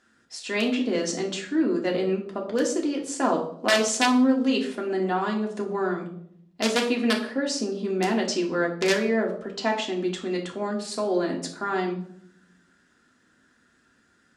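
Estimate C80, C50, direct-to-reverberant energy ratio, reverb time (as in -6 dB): 12.0 dB, 9.0 dB, -1.0 dB, 0.70 s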